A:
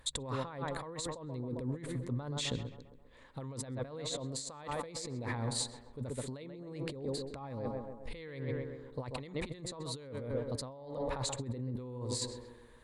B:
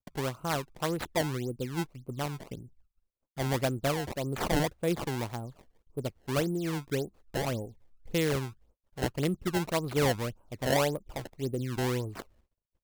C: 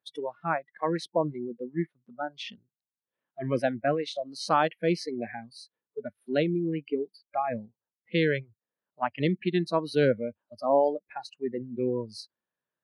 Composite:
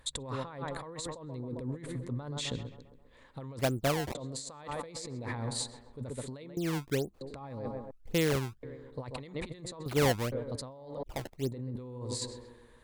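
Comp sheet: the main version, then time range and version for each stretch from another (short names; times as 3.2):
A
3.59–4.15 from B
6.57–7.21 from B
7.91–8.63 from B
9.86–10.32 from B
11.03–11.52 from B
not used: C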